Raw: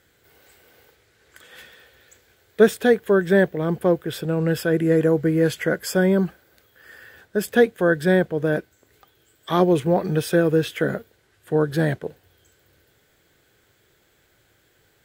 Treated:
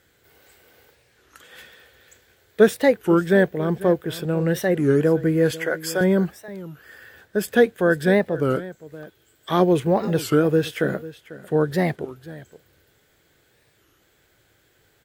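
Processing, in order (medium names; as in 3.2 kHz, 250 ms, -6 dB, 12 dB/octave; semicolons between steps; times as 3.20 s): 5.51–6.01 s: high-pass 450 Hz; delay 495 ms -17 dB; warped record 33 1/3 rpm, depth 250 cents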